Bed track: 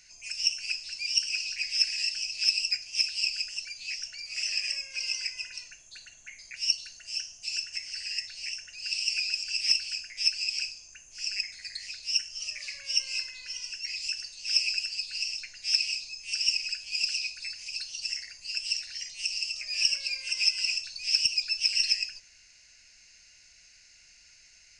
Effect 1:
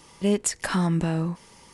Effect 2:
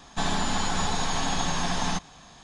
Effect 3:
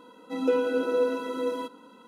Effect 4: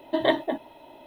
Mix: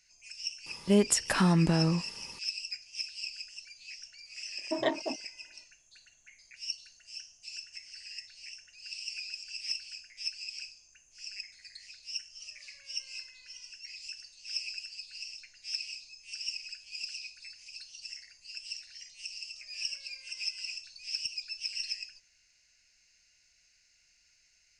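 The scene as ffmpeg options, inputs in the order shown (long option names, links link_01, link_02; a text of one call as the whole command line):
ffmpeg -i bed.wav -i cue0.wav -i cue1.wav -i cue2.wav -i cue3.wav -filter_complex "[0:a]volume=-10.5dB[link_01];[4:a]afwtdn=0.02[link_02];[1:a]atrim=end=1.73,asetpts=PTS-STARTPTS,volume=-1dB,afade=type=in:duration=0.004:curve=hsin,afade=type=out:start_time=1.726:duration=0.004:curve=hsin,adelay=660[link_03];[link_02]atrim=end=1.06,asetpts=PTS-STARTPTS,volume=-7.5dB,afade=type=in:duration=0.004:curve=hsin,afade=type=out:start_time=1.056:duration=0.004:curve=hsin,adelay=4580[link_04];[link_01][link_03][link_04]amix=inputs=3:normalize=0" out.wav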